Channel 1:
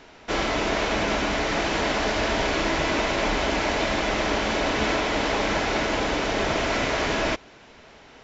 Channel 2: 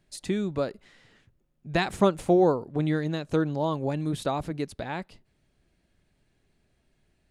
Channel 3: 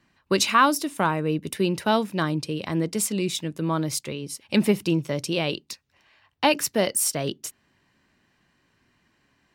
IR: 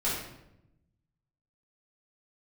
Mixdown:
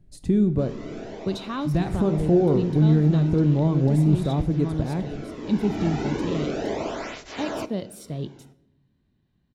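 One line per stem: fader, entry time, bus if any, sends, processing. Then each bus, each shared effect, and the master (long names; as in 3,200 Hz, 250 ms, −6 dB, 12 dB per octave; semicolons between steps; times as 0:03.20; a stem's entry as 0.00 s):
−13.0 dB, 0.30 s, no bus, send −22 dB, high-shelf EQ 5,700 Hz +11.5 dB; automatic gain control gain up to 12 dB; through-zero flanger with one copy inverted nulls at 0.36 Hz, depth 2 ms; automatic ducking −16 dB, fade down 1.45 s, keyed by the second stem
−2.5 dB, 0.00 s, bus A, send −19 dB, high-shelf EQ 5,100 Hz +6.5 dB
−13.5 dB, 0.95 s, bus A, send −21 dB, parametric band 3,700 Hz +14.5 dB 0.48 octaves
bus A: 0.0 dB, low-shelf EQ 200 Hz +9 dB; brickwall limiter −18 dBFS, peak gain reduction 11 dB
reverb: on, RT60 0.85 s, pre-delay 3 ms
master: tilt shelving filter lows +10 dB, about 680 Hz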